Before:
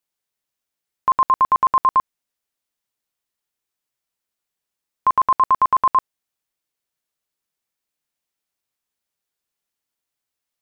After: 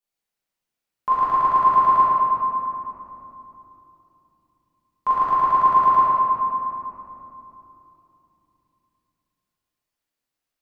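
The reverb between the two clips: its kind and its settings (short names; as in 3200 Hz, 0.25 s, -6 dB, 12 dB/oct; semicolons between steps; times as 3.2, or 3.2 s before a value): shoebox room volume 150 m³, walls hard, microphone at 1.3 m; gain -9 dB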